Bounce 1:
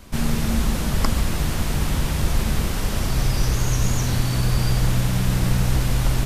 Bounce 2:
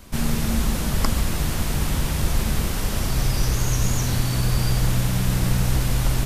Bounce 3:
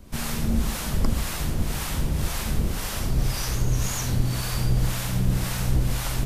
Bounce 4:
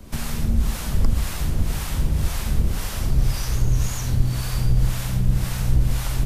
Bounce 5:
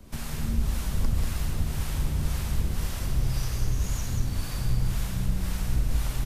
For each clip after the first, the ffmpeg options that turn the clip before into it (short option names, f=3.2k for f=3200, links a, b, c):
-af "highshelf=f=7.5k:g=4.5,volume=-1dB"
-filter_complex "[0:a]acrossover=split=600[a][b];[a]aeval=exprs='val(0)*(1-0.7/2+0.7/2*cos(2*PI*1.9*n/s))':c=same[c];[b]aeval=exprs='val(0)*(1-0.7/2-0.7/2*cos(2*PI*1.9*n/s))':c=same[d];[c][d]amix=inputs=2:normalize=0"
-filter_complex "[0:a]acrossover=split=130[a][b];[b]acompressor=threshold=-37dB:ratio=3[c];[a][c]amix=inputs=2:normalize=0,volume=5dB"
-af "aecho=1:1:189:0.631,volume=-7dB"